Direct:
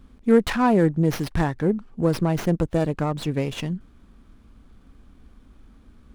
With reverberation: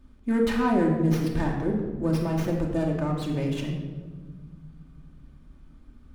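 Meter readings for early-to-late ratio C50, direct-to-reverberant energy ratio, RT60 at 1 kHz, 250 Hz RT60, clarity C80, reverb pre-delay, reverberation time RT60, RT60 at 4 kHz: 3.5 dB, -1.5 dB, 1.3 s, 2.6 s, 6.0 dB, 3 ms, 1.5 s, 0.85 s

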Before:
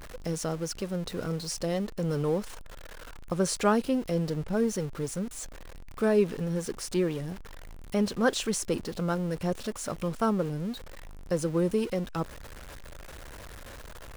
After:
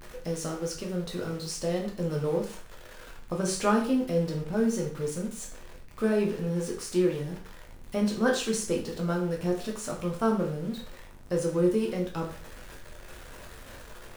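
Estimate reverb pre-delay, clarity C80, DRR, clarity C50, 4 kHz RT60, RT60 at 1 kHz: 5 ms, 12.0 dB, -1.0 dB, 8.0 dB, 0.45 s, 0.45 s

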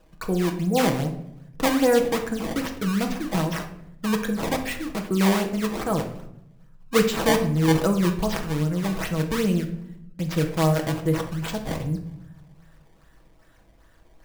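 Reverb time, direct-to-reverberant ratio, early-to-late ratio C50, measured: 0.75 s, 2.5 dB, 9.0 dB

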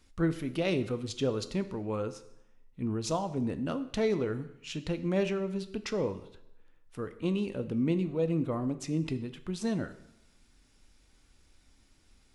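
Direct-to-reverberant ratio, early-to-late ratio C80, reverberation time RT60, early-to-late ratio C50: 10.5 dB, 16.0 dB, 0.80 s, 14.0 dB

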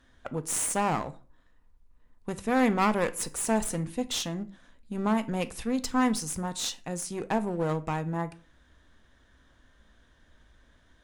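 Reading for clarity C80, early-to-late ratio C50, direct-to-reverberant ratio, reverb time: 24.0 dB, 18.5 dB, 11.0 dB, 0.40 s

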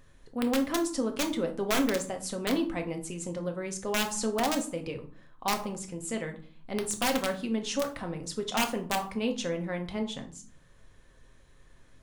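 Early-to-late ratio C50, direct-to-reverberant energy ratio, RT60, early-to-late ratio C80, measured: 11.5 dB, 4.0 dB, 0.50 s, 17.0 dB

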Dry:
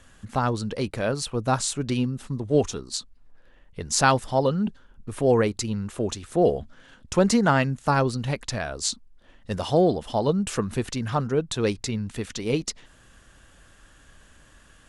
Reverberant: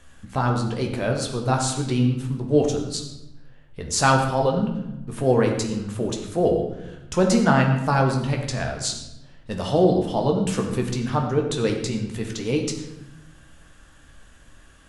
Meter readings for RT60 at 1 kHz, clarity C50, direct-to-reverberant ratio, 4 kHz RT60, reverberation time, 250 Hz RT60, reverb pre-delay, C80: 0.85 s, 6.0 dB, 1.5 dB, 0.70 s, 0.95 s, 1.3 s, 13 ms, 7.5 dB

